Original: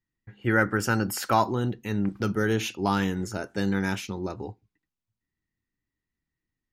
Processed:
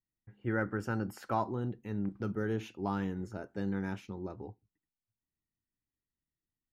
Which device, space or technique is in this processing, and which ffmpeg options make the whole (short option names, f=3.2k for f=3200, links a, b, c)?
through cloth: -af "highshelf=f=2.2k:g=-15,volume=-8dB"